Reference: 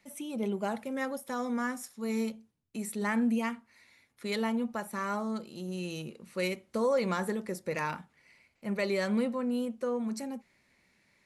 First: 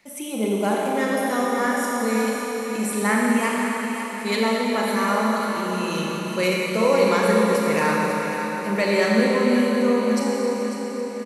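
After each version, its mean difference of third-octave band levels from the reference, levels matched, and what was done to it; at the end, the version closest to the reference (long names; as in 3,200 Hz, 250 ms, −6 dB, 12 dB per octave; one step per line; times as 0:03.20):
9.5 dB: low-shelf EQ 220 Hz −5 dB
mains-hum notches 60/120/180/240 Hz
repeating echo 547 ms, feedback 51%, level −9.5 dB
four-comb reverb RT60 3.7 s, combs from 29 ms, DRR −3 dB
level +8.5 dB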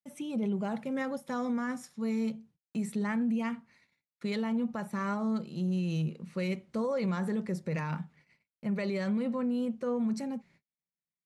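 4.0 dB: parametric band 160 Hz +14 dB 0.65 octaves
brickwall limiter −24.5 dBFS, peak gain reduction 9 dB
high-frequency loss of the air 55 metres
noise gate −59 dBFS, range −39 dB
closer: second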